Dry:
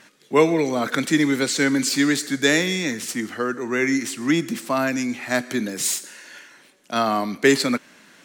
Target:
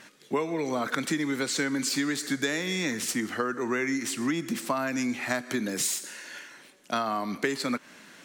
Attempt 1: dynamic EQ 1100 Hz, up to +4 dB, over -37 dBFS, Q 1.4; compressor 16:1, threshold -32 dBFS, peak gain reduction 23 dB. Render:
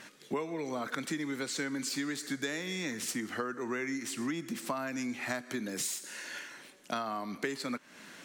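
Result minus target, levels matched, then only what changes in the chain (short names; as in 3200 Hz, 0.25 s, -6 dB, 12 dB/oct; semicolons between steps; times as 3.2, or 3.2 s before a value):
compressor: peak gain reduction +7 dB
change: compressor 16:1, threshold -24.5 dBFS, peak gain reduction 16 dB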